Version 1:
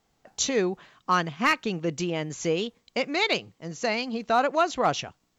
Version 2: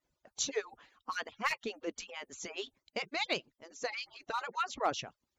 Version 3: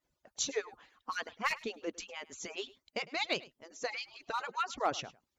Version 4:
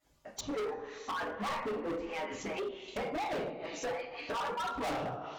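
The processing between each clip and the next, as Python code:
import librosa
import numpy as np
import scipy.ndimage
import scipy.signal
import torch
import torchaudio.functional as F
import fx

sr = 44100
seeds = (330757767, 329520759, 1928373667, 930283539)

y1 = fx.hpss_only(x, sr, part='percussive')
y1 = F.gain(torch.from_numpy(y1), -7.5).numpy()
y2 = y1 + 10.0 ** (-20.5 / 20.0) * np.pad(y1, (int(104 * sr / 1000.0), 0))[:len(y1)]
y3 = fx.rev_double_slope(y2, sr, seeds[0], early_s=0.4, late_s=2.2, knee_db=-20, drr_db=-7.5)
y3 = fx.env_lowpass_down(y3, sr, base_hz=910.0, full_db=-30.5)
y3 = np.clip(y3, -10.0 ** (-36.5 / 20.0), 10.0 ** (-36.5 / 20.0))
y3 = F.gain(torch.from_numpy(y3), 3.5).numpy()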